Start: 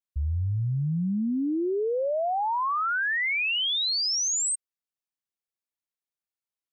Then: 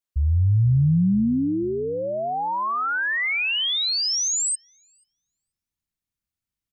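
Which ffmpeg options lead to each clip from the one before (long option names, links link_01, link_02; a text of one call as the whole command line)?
ffmpeg -i in.wav -filter_complex "[0:a]asplit=2[link_01][link_02];[link_02]adelay=485,lowpass=frequency=1100:poles=1,volume=-20dB,asplit=2[link_03][link_04];[link_04]adelay=485,lowpass=frequency=1100:poles=1,volume=0.42,asplit=2[link_05][link_06];[link_06]adelay=485,lowpass=frequency=1100:poles=1,volume=0.42[link_07];[link_01][link_03][link_05][link_07]amix=inputs=4:normalize=0,asubboost=boost=9:cutoff=180,volume=3dB" out.wav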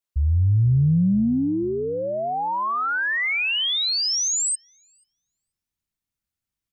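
ffmpeg -i in.wav -af "acontrast=40,volume=-5dB" out.wav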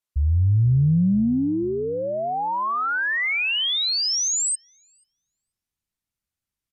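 ffmpeg -i in.wav -af "aresample=32000,aresample=44100" out.wav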